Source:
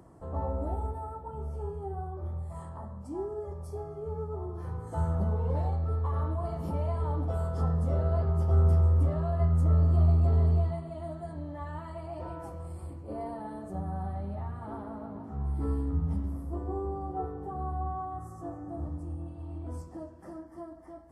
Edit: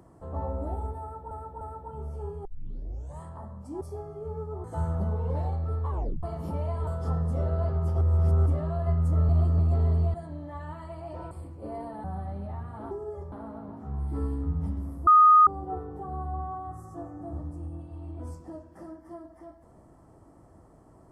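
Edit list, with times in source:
1.01–1.31 s: loop, 3 plays
1.85 s: tape start 0.76 s
3.21–3.62 s: move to 14.79 s
4.45–4.84 s: delete
6.10 s: tape stop 0.33 s
7.07–7.40 s: delete
8.54–8.99 s: reverse
9.82–10.12 s: reverse
10.67–11.20 s: delete
12.37–12.77 s: delete
13.50–13.92 s: delete
16.54–16.94 s: bleep 1.24 kHz -12.5 dBFS

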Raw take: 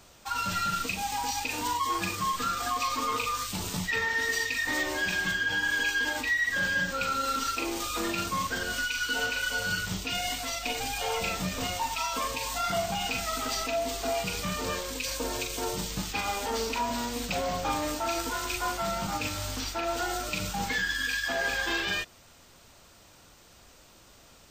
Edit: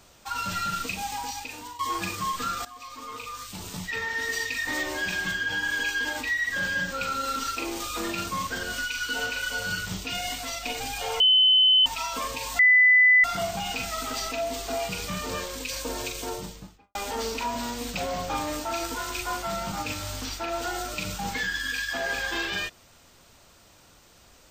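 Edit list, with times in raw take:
1.03–1.79 s: fade out, to -14.5 dB
2.65–4.47 s: fade in, from -17.5 dB
11.20–11.86 s: bleep 3.04 kHz -15 dBFS
12.59 s: add tone 2 kHz -13.5 dBFS 0.65 s
15.50–16.30 s: studio fade out

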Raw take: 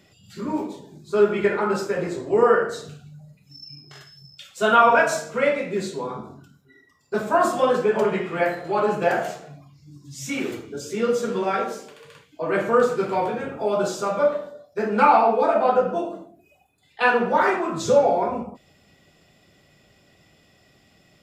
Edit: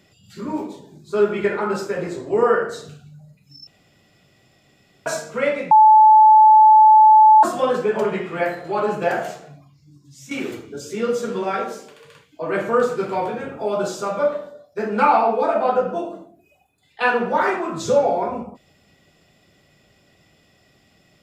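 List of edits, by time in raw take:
3.67–5.06 s: room tone
5.71–7.43 s: bleep 866 Hz -6.5 dBFS
9.45–10.31 s: fade out, to -10 dB

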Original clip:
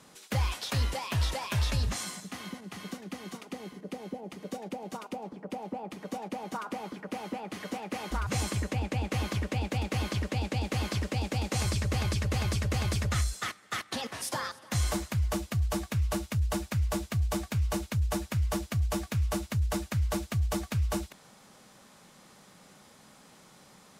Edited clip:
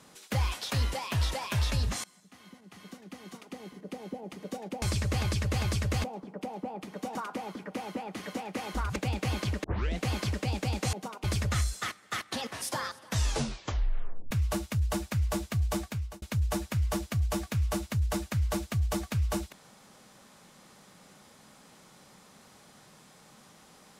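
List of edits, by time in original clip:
2.04–4.23 s: fade in, from -23.5 dB
4.82–5.13 s: swap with 11.62–12.84 s
6.24–6.52 s: delete
8.33–9.65 s: delete
10.33 s: tape start 0.37 s
14.64 s: tape stop 1.27 s
17.39–17.82 s: fade out

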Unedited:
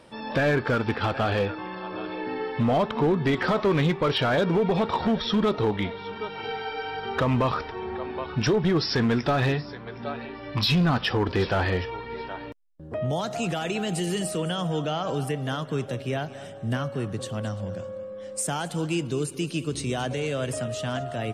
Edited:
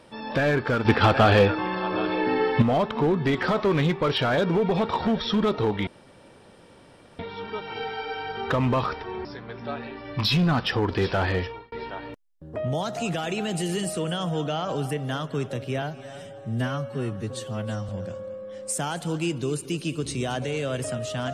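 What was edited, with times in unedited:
0.85–2.62 s: gain +7.5 dB
5.87 s: insert room tone 1.32 s
7.93–9.63 s: delete
11.81–12.10 s: fade out
16.20–17.58 s: stretch 1.5×

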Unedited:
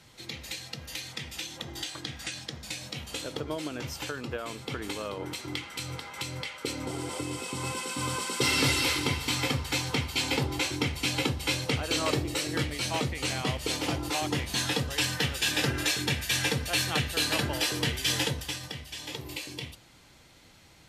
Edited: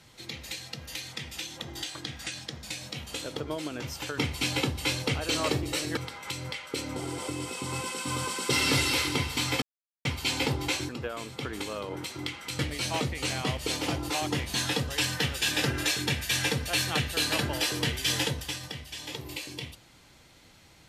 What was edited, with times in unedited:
4.18–5.88 s: swap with 10.80–12.59 s
9.53–9.96 s: mute

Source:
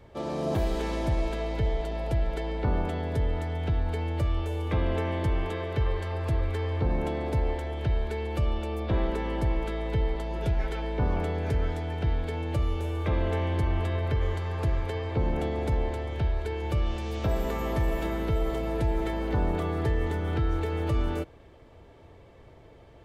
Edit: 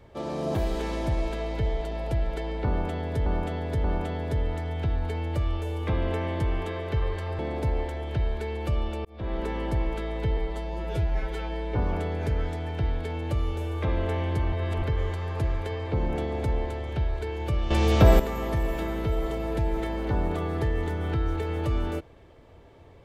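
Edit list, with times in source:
2.68–3.26 s: loop, 3 plays
6.23–7.09 s: delete
8.75–9.17 s: fade in
10.07–11.00 s: stretch 1.5×
13.76–14.06 s: reverse
16.94–17.43 s: gain +11 dB

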